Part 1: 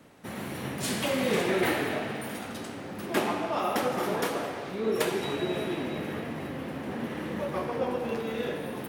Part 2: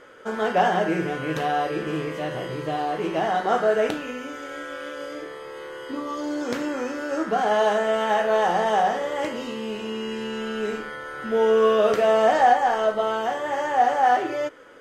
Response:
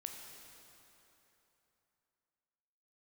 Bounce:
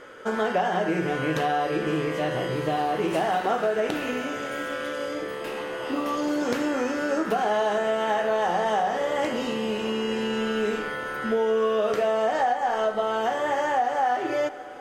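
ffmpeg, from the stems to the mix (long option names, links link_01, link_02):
-filter_complex "[0:a]equalizer=frequency=2700:width=4.8:gain=10.5,asoftclip=type=tanh:threshold=-23.5dB,adelay=2300,volume=-8dB[link_01];[1:a]volume=2dB,asplit=2[link_02][link_03];[link_03]volume=-11dB[link_04];[2:a]atrim=start_sample=2205[link_05];[link_04][link_05]afir=irnorm=-1:irlink=0[link_06];[link_01][link_02][link_06]amix=inputs=3:normalize=0,acompressor=threshold=-21dB:ratio=6"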